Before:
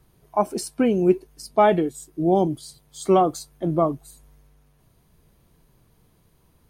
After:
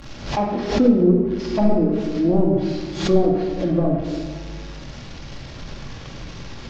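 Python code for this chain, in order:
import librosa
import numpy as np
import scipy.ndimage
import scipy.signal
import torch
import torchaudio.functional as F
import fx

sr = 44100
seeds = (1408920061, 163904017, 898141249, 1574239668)

y = fx.delta_mod(x, sr, bps=32000, step_db=-35.5)
y = fx.env_lowpass_down(y, sr, base_hz=490.0, full_db=-16.5)
y = fx.doubler(y, sr, ms=46.0, db=-11.5)
y = fx.room_shoebox(y, sr, seeds[0], volume_m3=1200.0, walls='mixed', distance_m=2.3)
y = fx.pre_swell(y, sr, db_per_s=94.0)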